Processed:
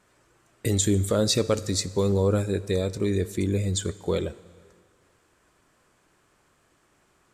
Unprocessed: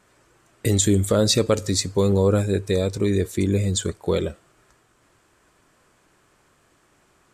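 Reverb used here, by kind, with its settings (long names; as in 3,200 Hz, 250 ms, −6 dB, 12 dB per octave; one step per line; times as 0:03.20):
dense smooth reverb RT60 1.8 s, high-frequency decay 0.95×, DRR 17 dB
level −4 dB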